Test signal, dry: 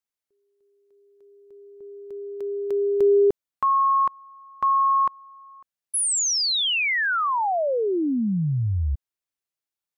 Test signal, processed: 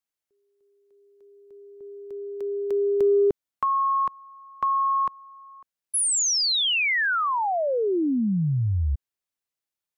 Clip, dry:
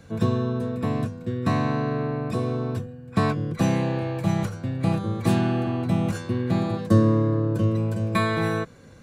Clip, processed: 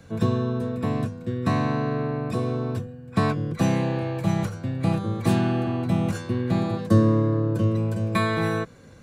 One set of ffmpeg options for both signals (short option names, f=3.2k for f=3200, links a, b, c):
-filter_complex "[0:a]acrossover=split=350|1900[a][b][c];[b]acompressor=threshold=-26dB:ratio=6:attack=32:release=28:knee=2.83:detection=peak[d];[a][d][c]amix=inputs=3:normalize=0"